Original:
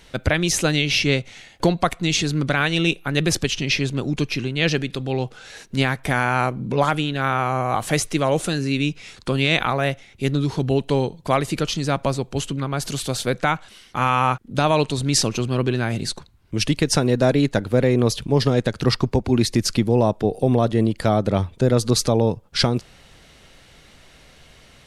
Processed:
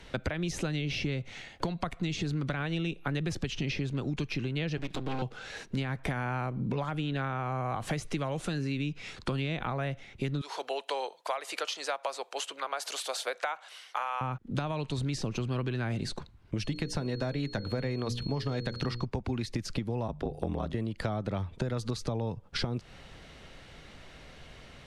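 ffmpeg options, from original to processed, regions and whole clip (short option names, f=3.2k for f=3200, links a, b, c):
-filter_complex "[0:a]asettb=1/sr,asplit=3[a][b][c];[a]atrim=end=4.774[d];[b]atrim=start=4.77:end=5.22,asetpts=PTS-STARTPTS,afade=t=in:d=0.004:c=qsin,afade=t=out:st=0.446:d=0.004:c=qsin,highpass=f=170:w=0.5412,highpass=f=170:w=1.3066,aecho=1:1:6.4:0.87,atrim=end_sample=19845,aeval=exprs='max(val(0),0)':c=same[e];[c]atrim=start=5.216[f];[d][e]acrossfade=d=0.004:c1=hsin:c2=qsin[g];[g][f]acrossfade=d=0.004:c1=qsin:c2=hsin,asettb=1/sr,asplit=3[h][i][j];[h]atrim=end=10.414[k];[i]atrim=start=10.41:end=14.21,asetpts=PTS-STARTPTS,afade=t=in:d=0.004:c=qsin,afade=t=out:st=3.796:d=0.004:c=qsin,highpass=f=590:w=0.5412,highpass=f=590:w=1.3066,highshelf=f=8k:g=7.5[l];[j]atrim=start=14.206[m];[k][l]acrossfade=d=0.004:c1=hsin:c2=qsin[n];[n][m]acrossfade=d=0.004:c1=qsin:c2=hsin,asettb=1/sr,asplit=3[o][p][q];[o]atrim=end=16.624[r];[p]atrim=start=16.62:end=19.05,asetpts=PTS-STARTPTS,afade=t=in:d=0.004:c=qsin,afade=t=out:st=2.426:d=0.004:c=qsin,bandreject=f=60:t=h:w=6,bandreject=f=120:t=h:w=6,bandreject=f=180:t=h:w=6,bandreject=f=240:t=h:w=6,bandreject=f=300:t=h:w=6,bandreject=f=360:t=h:w=6,bandreject=f=420:t=h:w=6,bandreject=f=480:t=h:w=6,bandreject=f=540:t=h:w=6,aeval=exprs='val(0)+0.0178*sin(2*PI*4300*n/s)':c=same[s];[q]atrim=start=19.046[t];[r][s]acrossfade=d=0.004:c1=hsin:c2=qsin[u];[u][t]acrossfade=d=0.004:c1=qsin:c2=hsin,asettb=1/sr,asplit=3[v][w][x];[v]atrim=end=20.074[y];[w]atrim=start=20.07:end=20.74,asetpts=PTS-STARTPTS,afade=t=in:d=0.004:c=qsin,afade=t=out:st=0.666:d=0.004:c=qsin,aeval=exprs='val(0)*sin(2*PI*42*n/s)':c=same,bandreject=f=50:t=h:w=6,bandreject=f=100:t=h:w=6,bandreject=f=150:t=h:w=6,bandreject=f=200:t=h:w=6[z];[x]atrim=start=20.736[aa];[y][z]acrossfade=d=0.004:c1=hsin:c2=qsin[ab];[ab][aa]acrossfade=d=0.004:c1=qsin:c2=hsin,acrossover=split=210|800[ac][ad][ae];[ac]acompressor=threshold=-23dB:ratio=4[af];[ad]acompressor=threshold=-29dB:ratio=4[ag];[ae]acompressor=threshold=-27dB:ratio=4[ah];[af][ag][ah]amix=inputs=3:normalize=0,aemphasis=mode=reproduction:type=50kf,acompressor=threshold=-29dB:ratio=6"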